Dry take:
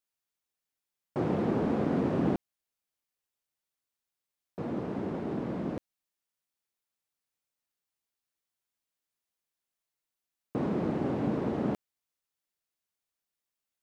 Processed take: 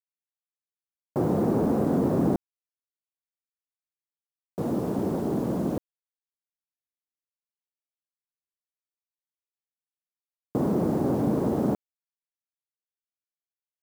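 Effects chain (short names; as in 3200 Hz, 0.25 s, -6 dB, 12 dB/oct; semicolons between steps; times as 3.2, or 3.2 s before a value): LPF 1100 Hz 12 dB/oct; in parallel at +2 dB: limiter -25 dBFS, peak gain reduction 8.5 dB; on the sum: bit-crush 8-bit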